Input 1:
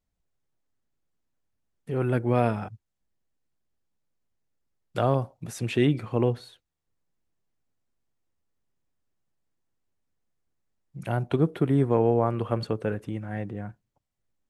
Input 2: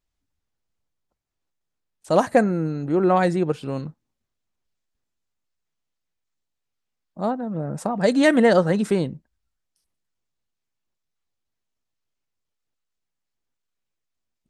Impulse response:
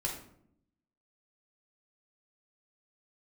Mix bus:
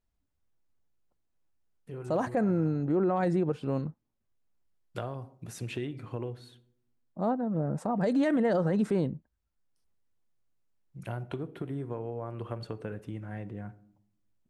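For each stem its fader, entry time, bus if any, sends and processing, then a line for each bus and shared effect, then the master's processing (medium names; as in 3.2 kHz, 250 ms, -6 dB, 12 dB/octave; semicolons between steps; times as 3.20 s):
-6.5 dB, 0.00 s, send -14 dB, compression 6:1, threshold -27 dBFS, peak gain reduction 10.5 dB; auto duck -12 dB, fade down 0.30 s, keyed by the second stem
-2.0 dB, 0.00 s, no send, treble shelf 2.2 kHz -11.5 dB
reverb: on, RT60 0.70 s, pre-delay 3 ms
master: peak limiter -19.5 dBFS, peak gain reduction 12 dB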